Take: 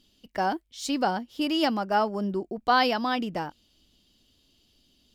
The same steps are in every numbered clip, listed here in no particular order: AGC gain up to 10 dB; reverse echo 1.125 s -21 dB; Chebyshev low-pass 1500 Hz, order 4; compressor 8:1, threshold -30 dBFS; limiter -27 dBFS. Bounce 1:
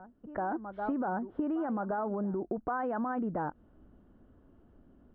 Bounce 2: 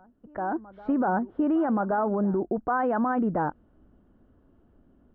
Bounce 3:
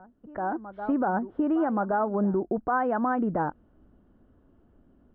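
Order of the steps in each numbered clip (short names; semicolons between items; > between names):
reverse echo > Chebyshev low-pass > limiter > AGC > compressor; Chebyshev low-pass > limiter > compressor > reverse echo > AGC; reverse echo > compressor > Chebyshev low-pass > limiter > AGC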